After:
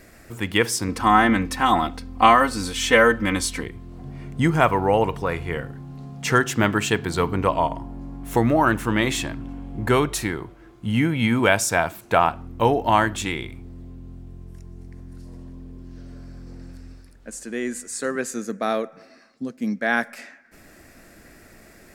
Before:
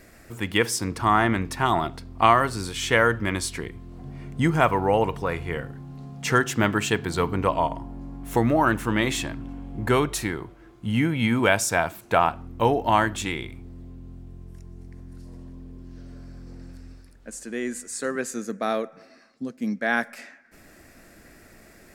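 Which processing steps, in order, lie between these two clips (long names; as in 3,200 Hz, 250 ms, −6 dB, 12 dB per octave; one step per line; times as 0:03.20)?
0:00.88–0:03.63: comb filter 3.9 ms, depth 81%
level +2 dB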